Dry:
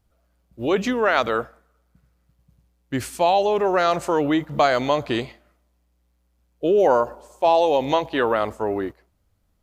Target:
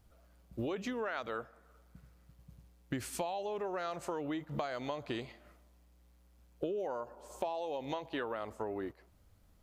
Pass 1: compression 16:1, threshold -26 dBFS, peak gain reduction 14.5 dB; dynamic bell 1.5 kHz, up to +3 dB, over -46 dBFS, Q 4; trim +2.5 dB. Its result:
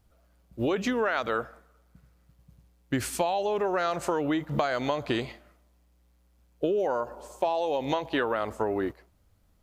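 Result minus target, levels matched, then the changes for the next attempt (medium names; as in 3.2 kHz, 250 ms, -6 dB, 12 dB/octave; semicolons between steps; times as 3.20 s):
compression: peak gain reduction -10.5 dB
change: compression 16:1, threshold -37 dBFS, peak gain reduction 24.5 dB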